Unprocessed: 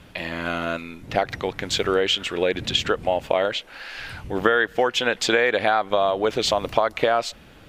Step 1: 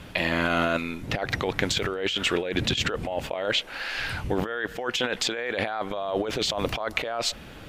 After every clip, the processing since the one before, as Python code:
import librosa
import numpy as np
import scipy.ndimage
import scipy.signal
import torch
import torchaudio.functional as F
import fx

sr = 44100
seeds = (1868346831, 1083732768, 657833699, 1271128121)

y = fx.over_compress(x, sr, threshold_db=-27.0, ratio=-1.0)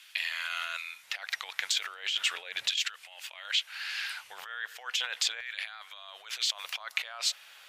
y = fx.filter_lfo_highpass(x, sr, shape='saw_down', hz=0.37, low_hz=540.0, high_hz=1900.0, q=0.73)
y = fx.tone_stack(y, sr, knobs='10-0-10')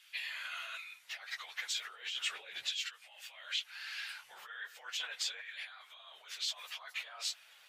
y = fx.phase_scramble(x, sr, seeds[0], window_ms=50)
y = F.gain(torch.from_numpy(y), -7.5).numpy()